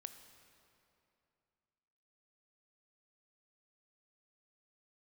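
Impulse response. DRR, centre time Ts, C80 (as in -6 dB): 8.5 dB, 26 ms, 10.0 dB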